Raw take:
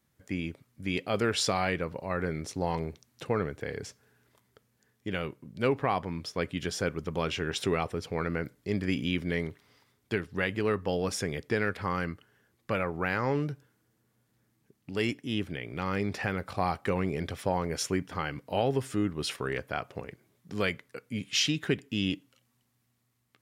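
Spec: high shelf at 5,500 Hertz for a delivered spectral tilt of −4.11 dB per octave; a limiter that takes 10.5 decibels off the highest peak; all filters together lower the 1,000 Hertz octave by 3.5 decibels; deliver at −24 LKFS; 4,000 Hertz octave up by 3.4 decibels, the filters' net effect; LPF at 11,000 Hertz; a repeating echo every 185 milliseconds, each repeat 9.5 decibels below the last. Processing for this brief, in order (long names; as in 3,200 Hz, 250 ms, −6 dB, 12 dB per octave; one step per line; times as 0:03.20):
low-pass filter 11,000 Hz
parametric band 1,000 Hz −5 dB
parametric band 4,000 Hz +8.5 dB
high-shelf EQ 5,500 Hz −8.5 dB
brickwall limiter −22 dBFS
repeating echo 185 ms, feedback 33%, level −9.5 dB
level +11 dB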